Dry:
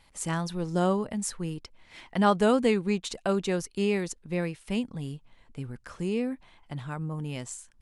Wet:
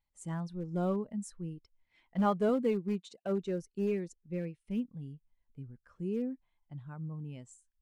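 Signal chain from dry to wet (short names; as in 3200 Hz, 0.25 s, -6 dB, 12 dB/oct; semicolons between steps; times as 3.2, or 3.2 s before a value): 2.49–3.42 HPF 120 Hz 12 dB/oct; in parallel at -10 dB: wrapped overs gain 20.5 dB; on the sum: spectral expander 1.5:1; gain -8.5 dB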